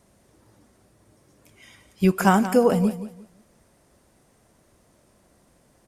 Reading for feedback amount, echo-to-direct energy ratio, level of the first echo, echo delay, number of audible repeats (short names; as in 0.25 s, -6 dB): 26%, -12.5 dB, -13.0 dB, 0.176 s, 2